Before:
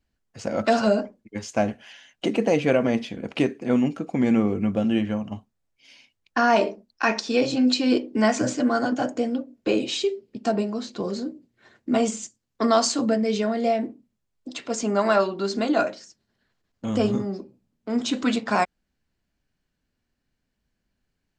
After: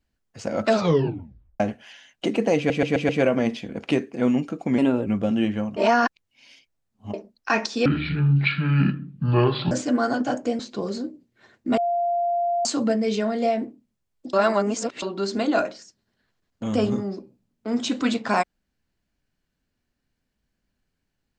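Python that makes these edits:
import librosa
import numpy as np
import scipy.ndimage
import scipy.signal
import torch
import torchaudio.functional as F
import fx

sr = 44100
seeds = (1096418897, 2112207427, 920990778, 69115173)

y = fx.edit(x, sr, fx.tape_stop(start_s=0.69, length_s=0.91),
    fx.stutter(start_s=2.57, slice_s=0.13, count=5),
    fx.speed_span(start_s=4.26, length_s=0.34, speed=1.19),
    fx.reverse_span(start_s=5.3, length_s=1.37),
    fx.speed_span(start_s=7.39, length_s=1.04, speed=0.56),
    fx.cut(start_s=9.31, length_s=1.5),
    fx.bleep(start_s=11.99, length_s=0.88, hz=694.0, db=-20.0),
    fx.reverse_span(start_s=14.55, length_s=0.69), tone=tone)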